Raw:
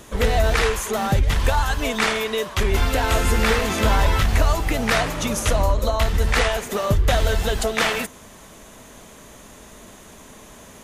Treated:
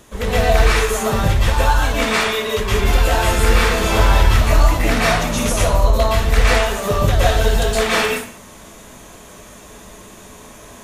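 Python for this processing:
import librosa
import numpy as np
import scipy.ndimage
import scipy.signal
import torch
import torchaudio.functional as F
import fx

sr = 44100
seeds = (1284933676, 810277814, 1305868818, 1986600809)

y = fx.rev_plate(x, sr, seeds[0], rt60_s=0.51, hf_ratio=0.9, predelay_ms=105, drr_db=-7.0)
y = F.gain(torch.from_numpy(y), -3.5).numpy()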